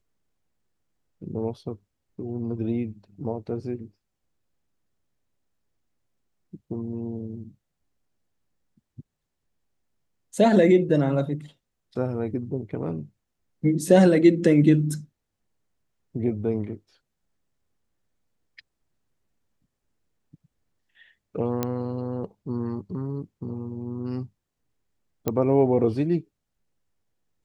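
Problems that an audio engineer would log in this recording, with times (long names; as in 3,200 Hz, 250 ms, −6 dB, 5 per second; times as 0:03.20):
0:21.63: click −11 dBFS
0:25.28: click −11 dBFS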